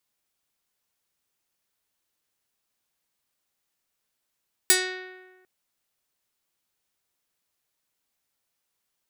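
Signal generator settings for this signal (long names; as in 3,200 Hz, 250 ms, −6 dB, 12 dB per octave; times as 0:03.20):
Karplus-Strong string F#4, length 0.75 s, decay 1.35 s, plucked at 0.35, medium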